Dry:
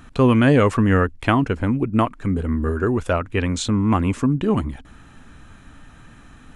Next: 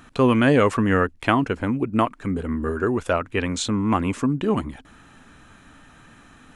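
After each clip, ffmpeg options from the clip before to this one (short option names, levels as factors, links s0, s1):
-af "lowshelf=f=130:g=-11"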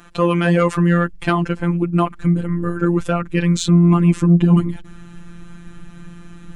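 -af "asubboost=boost=6.5:cutoff=250,afftfilt=real='hypot(re,im)*cos(PI*b)':imag='0':win_size=1024:overlap=0.75,acontrast=62"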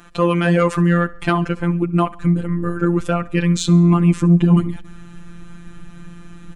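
-af "aecho=1:1:68|136|204|272:0.0841|0.0429|0.0219|0.0112"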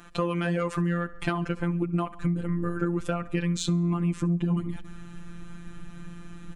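-af "acompressor=threshold=0.112:ratio=6,volume=0.631"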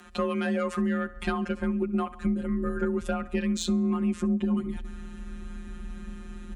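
-af "asoftclip=type=tanh:threshold=0.237,afreqshift=34"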